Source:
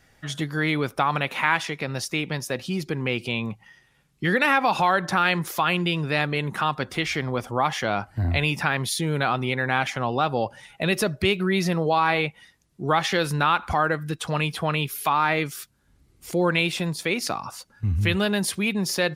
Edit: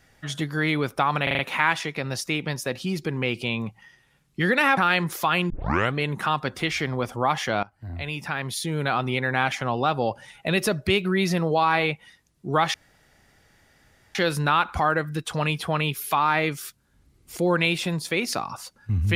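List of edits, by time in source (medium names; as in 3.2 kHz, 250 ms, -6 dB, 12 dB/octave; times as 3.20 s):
1.23 s: stutter 0.04 s, 5 plays
4.61–5.12 s: delete
5.85 s: tape start 0.45 s
7.98–9.44 s: fade in, from -19.5 dB
13.09 s: insert room tone 1.41 s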